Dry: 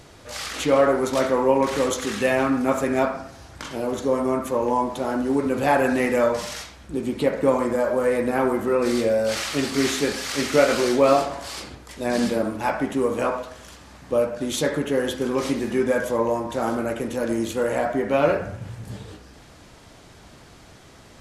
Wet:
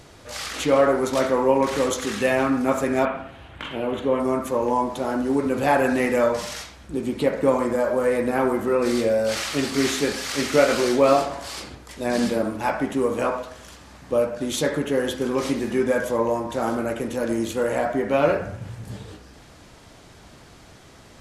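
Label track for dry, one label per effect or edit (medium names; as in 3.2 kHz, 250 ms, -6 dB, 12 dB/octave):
3.050000	4.200000	resonant high shelf 4 kHz -10 dB, Q 3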